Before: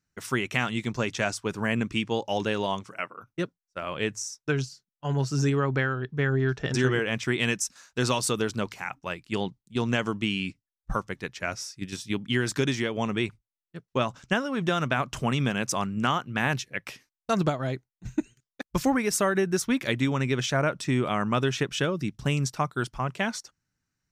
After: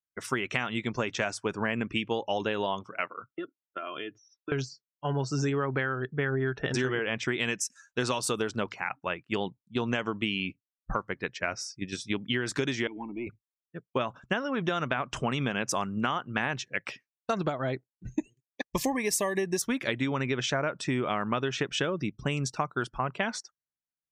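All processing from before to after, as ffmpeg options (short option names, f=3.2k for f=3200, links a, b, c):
-filter_complex "[0:a]asettb=1/sr,asplit=3[a][b][c];[a]atrim=end=3.294[d];[b]atrim=start=3.29:end=4.52,asetpts=PTS-STARTPTS,afade=t=in:d=0.004:c=qsin,afade=t=out:st=1.226:d=0.004:c=qsin,aecho=1:1:2.9:0.59,atrim=end_sample=54243,acompressor=threshold=-36dB:ratio=16:attack=3.2:release=140:knee=1:detection=peak,highpass=f=130:w=0.5412,highpass=f=130:w=1.3066,equalizer=f=320:t=q:w=4:g=4,equalizer=f=910:t=q:w=4:g=-3,equalizer=f=1.3k:t=q:w=4:g=5,equalizer=f=3.4k:t=q:w=4:g=7,lowpass=f=3.9k:w=0.5412,lowpass=f=3.9k:w=1.3066[e];[c]atrim=start=4.516[f];[d][e]acrossfade=d=0.004:c1=hsin:c2=qsin[g];[g][f]acrossfade=d=0.004:c1=qsin:c2=hsin,asettb=1/sr,asplit=3[h][i][j];[h]atrim=end=12.874[k];[i]atrim=start=12.87:end=13.27,asetpts=PTS-STARTPTS,afade=t=in:d=0.004:c=qsin,afade=t=out:st=0.396:d=0.004:c=qsin,asplit=3[l][m][n];[l]bandpass=f=300:t=q:w=8,volume=0dB[o];[m]bandpass=f=870:t=q:w=8,volume=-6dB[p];[n]bandpass=f=2.24k:t=q:w=8,volume=-9dB[q];[o][p][q]amix=inputs=3:normalize=0,lowshelf=f=250:g=8,aeval=exprs='(tanh(22.4*val(0)+0.2)-tanh(0.2))/22.4':c=same[r];[j]atrim=start=13.266[s];[k][r]acrossfade=d=0.004:c1=hsin:c2=qsin[t];[t][s]acrossfade=d=0.004:c1=qsin:c2=hsin,asettb=1/sr,asplit=3[u][v][w];[u]atrim=end=18.114[x];[v]atrim=start=18.11:end=19.62,asetpts=PTS-STARTPTS,afade=t=in:d=0.004:c=qsin,afade=t=out:st=1.506:d=0.004:c=qsin,asuperstop=centerf=1400:order=12:qfactor=3.3,highshelf=f=5.3k:g=9[y];[w]atrim=start=19.616[z];[x][y]acrossfade=d=0.004:c1=hsin:c2=qsin[aa];[aa][z]acrossfade=d=0.004:c1=qsin:c2=hsin,afftdn=nr=25:nf=-48,bass=f=250:g=-6,treble=f=4k:g=-4,acompressor=threshold=-28dB:ratio=6,volume=3dB"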